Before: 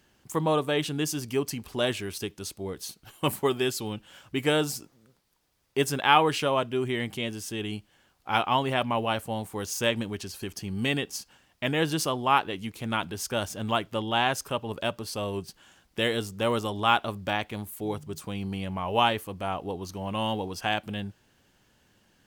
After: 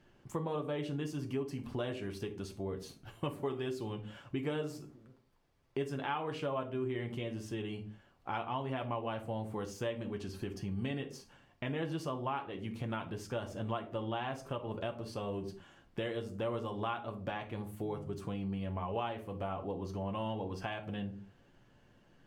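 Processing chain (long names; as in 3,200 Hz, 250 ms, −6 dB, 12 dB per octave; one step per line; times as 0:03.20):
convolution reverb, pre-delay 6 ms, DRR 3.5 dB
downward compressor 3 to 1, threshold −36 dBFS, peak gain reduction 17 dB
low-pass filter 1,300 Hz 6 dB per octave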